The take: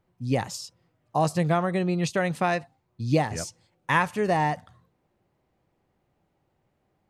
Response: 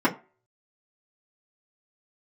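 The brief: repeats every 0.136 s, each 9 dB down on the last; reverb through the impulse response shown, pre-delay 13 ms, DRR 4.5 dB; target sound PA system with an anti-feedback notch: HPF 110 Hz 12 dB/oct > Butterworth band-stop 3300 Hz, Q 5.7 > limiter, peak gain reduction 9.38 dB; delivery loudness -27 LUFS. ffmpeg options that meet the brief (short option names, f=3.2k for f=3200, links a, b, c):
-filter_complex "[0:a]aecho=1:1:136|272|408|544:0.355|0.124|0.0435|0.0152,asplit=2[a][b];[1:a]atrim=start_sample=2205,adelay=13[c];[b][c]afir=irnorm=-1:irlink=0,volume=-20dB[d];[a][d]amix=inputs=2:normalize=0,highpass=110,asuperstop=centerf=3300:order=8:qfactor=5.7,volume=-1dB,alimiter=limit=-16dB:level=0:latency=1"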